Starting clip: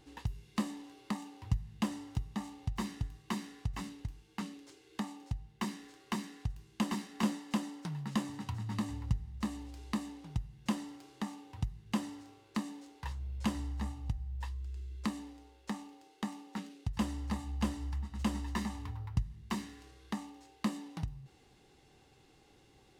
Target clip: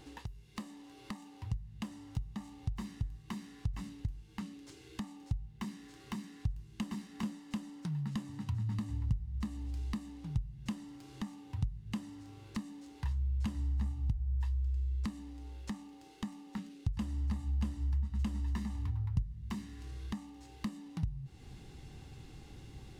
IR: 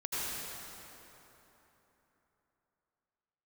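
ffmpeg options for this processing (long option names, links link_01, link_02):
-af "acompressor=threshold=-56dB:ratio=2.5,asubboost=boost=4:cutoff=220,volume=6.5dB"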